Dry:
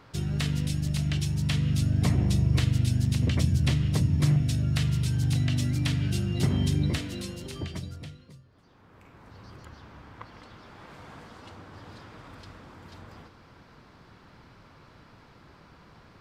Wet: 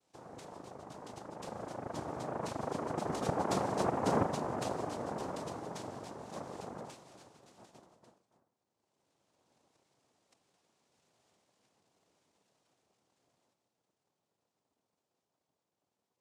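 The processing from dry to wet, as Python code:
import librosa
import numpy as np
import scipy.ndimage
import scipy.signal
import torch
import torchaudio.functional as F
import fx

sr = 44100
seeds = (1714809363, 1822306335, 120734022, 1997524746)

y = fx.doppler_pass(x, sr, speed_mps=17, closest_m=12.0, pass_at_s=3.84)
y = fx.env_lowpass(y, sr, base_hz=630.0, full_db=-61.0)
y = fx.noise_vocoder(y, sr, seeds[0], bands=2)
y = F.gain(torch.from_numpy(y), -7.0).numpy()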